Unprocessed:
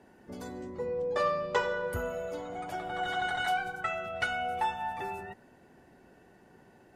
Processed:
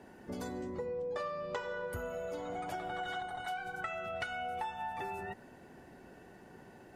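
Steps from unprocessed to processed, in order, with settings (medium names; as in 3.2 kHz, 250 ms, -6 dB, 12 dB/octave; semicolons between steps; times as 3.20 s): compression 6:1, threshold -40 dBFS, peak gain reduction 15.5 dB; time-frequency box 3.22–3.46 s, 1.3–8.5 kHz -8 dB; trim +3.5 dB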